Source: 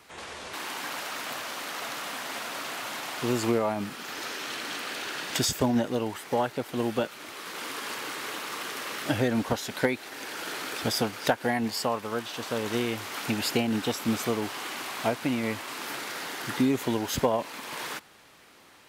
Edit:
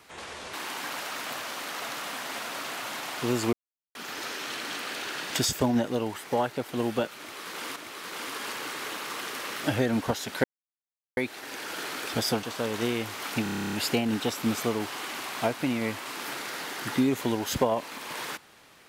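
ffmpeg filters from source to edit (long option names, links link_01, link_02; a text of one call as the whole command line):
ffmpeg -i in.wav -filter_complex "[0:a]asplit=16[link_01][link_02][link_03][link_04][link_05][link_06][link_07][link_08][link_09][link_10][link_11][link_12][link_13][link_14][link_15][link_16];[link_01]atrim=end=3.53,asetpts=PTS-STARTPTS,afade=type=out:start_time=3.526:duration=0.004:curve=hsin[link_17];[link_02]atrim=start=3.53:end=3.95,asetpts=PTS-STARTPTS,volume=0[link_18];[link_03]atrim=start=3.95:end=7.762,asetpts=PTS-STARTPTS,afade=type=in:duration=0.004:curve=hsin[link_19];[link_04]atrim=start=7.178:end=9.86,asetpts=PTS-STARTPTS,afade=type=out:start_time=2.678:duration=0.004:curve=hsin,apad=pad_dur=0.73[link_20];[link_05]atrim=start=9.86:end=11.122,asetpts=PTS-STARTPTS,afade=type=in:duration=0.004:curve=hsin[link_21];[link_06]atrim=start=12.348:end=13.382[link_22];[link_07]atrim=start=13.348:end=13.382[link_23];[link_08]atrim=start=13.348:end=13.382[link_24];[link_09]atrim=start=13.348:end=13.382[link_25];[link_10]atrim=start=13.348:end=13.382[link_26];[link_11]atrim=start=13.348:end=13.382[link_27];[link_12]atrim=start=13.348:end=13.382[link_28];[link_13]atrim=start=13.348:end=13.382[link_29];[link_14]atrim=start=13.348:end=13.382[link_30];[link_15]atrim=start=13.348:end=13.382[link_31];[link_16]atrim=start=13.348[link_32];[link_17][link_18][link_19]concat=n=3:v=0:a=1[link_33];[link_20][link_21]concat=n=2:v=0:a=1[link_34];[link_33][link_34]acrossfade=duration=0.004:curve1=hsin:curve2=hsin[link_35];[link_35][link_22]acrossfade=duration=0.004:curve1=hsin:curve2=hsin[link_36];[link_36][link_23]acrossfade=duration=0.004:curve1=hsin:curve2=hsin[link_37];[link_37][link_24]acrossfade=duration=0.004:curve1=hsin:curve2=hsin[link_38];[link_38][link_25]acrossfade=duration=0.004:curve1=hsin:curve2=hsin[link_39];[link_39][link_26]acrossfade=duration=0.004:curve1=hsin:curve2=hsin[link_40];[link_40][link_27]acrossfade=duration=0.004:curve1=hsin:curve2=hsin[link_41];[link_41][link_28]acrossfade=duration=0.004:curve1=hsin:curve2=hsin[link_42];[link_42][link_29]acrossfade=duration=0.004:curve1=hsin:curve2=hsin[link_43];[link_43][link_30]acrossfade=duration=0.004:curve1=hsin:curve2=hsin[link_44];[link_44][link_31]acrossfade=duration=0.004:curve1=hsin:curve2=hsin[link_45];[link_45][link_32]acrossfade=duration=0.004:curve1=hsin:curve2=hsin" out.wav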